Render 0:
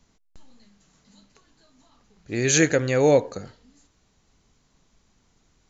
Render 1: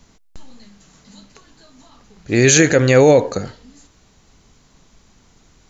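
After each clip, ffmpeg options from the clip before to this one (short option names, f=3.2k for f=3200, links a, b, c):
-af "alimiter=level_in=12.5dB:limit=-1dB:release=50:level=0:latency=1,volume=-1dB"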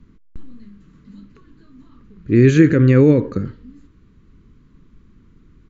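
-af "firequalizer=gain_entry='entry(320,0);entry(730,-27);entry(1100,-9);entry(5800,-28)':delay=0.05:min_phase=1,volume=4.5dB"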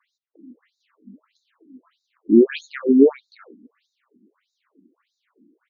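-af "afftfilt=real='re*between(b*sr/1024,250*pow(5200/250,0.5+0.5*sin(2*PI*1.6*pts/sr))/1.41,250*pow(5200/250,0.5+0.5*sin(2*PI*1.6*pts/sr))*1.41)':imag='im*between(b*sr/1024,250*pow(5200/250,0.5+0.5*sin(2*PI*1.6*pts/sr))/1.41,250*pow(5200/250,0.5+0.5*sin(2*PI*1.6*pts/sr))*1.41)':win_size=1024:overlap=0.75,volume=3dB"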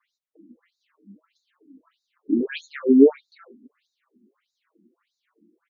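-filter_complex "[0:a]asplit=2[a][b];[b]adelay=5.3,afreqshift=1.4[c];[a][c]amix=inputs=2:normalize=1"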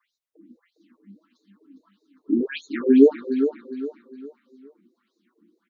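-af "aecho=1:1:408|816|1224|1632:0.355|0.128|0.046|0.0166"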